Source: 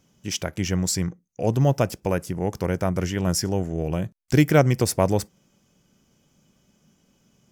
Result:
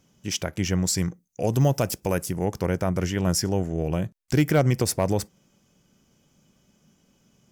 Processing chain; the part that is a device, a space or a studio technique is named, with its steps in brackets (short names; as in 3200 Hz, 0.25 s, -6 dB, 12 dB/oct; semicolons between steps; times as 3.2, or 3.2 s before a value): clipper into limiter (hard clip -8 dBFS, distortion -26 dB; limiter -11.5 dBFS, peak gain reduction 3.5 dB); 0.97–2.45 high shelf 5400 Hz +10 dB